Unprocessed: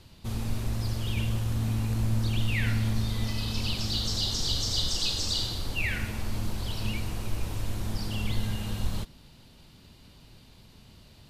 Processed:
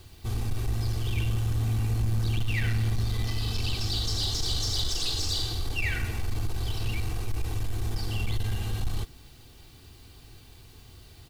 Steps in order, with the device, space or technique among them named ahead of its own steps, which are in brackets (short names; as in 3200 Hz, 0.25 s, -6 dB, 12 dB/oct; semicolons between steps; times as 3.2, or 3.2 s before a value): comb 2.6 ms, depth 60%; open-reel tape (soft clip -21.5 dBFS, distortion -14 dB; bell 92 Hz +4 dB 1.05 oct; white noise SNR 34 dB)